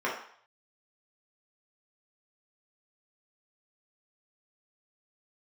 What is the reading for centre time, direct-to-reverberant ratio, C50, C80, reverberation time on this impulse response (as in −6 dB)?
34 ms, −5.5 dB, 5.0 dB, 9.0 dB, 0.60 s